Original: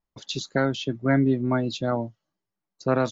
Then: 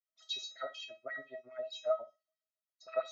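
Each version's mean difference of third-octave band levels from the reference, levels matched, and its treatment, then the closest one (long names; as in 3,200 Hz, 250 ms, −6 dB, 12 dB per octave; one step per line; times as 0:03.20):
10.5 dB: low-shelf EQ 180 Hz +8.5 dB
auto-filter high-pass sine 7.3 Hz 490–3,600 Hz
tuned comb filter 640 Hz, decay 0.24 s, harmonics all, mix 100%
flutter between parallel walls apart 10.6 metres, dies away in 0.21 s
level +4 dB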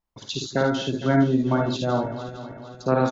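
6.0 dB: feedback delay that plays each chunk backwards 229 ms, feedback 66%, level −12 dB
parametric band 900 Hz +2.5 dB
on a send: ambience of single reflections 54 ms −4.5 dB, 73 ms −7.5 dB
on the sum: dynamic equaliser 2,000 Hz, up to −6 dB, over −43 dBFS, Q 2.3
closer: second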